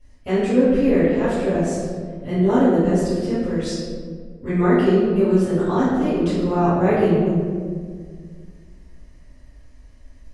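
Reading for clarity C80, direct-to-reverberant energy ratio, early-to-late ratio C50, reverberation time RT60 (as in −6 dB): 0.5 dB, −14.0 dB, −2.5 dB, 1.9 s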